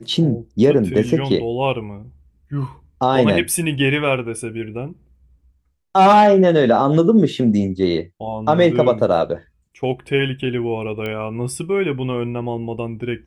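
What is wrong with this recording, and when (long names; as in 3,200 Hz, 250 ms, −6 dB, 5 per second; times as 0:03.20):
0:11.06: click −15 dBFS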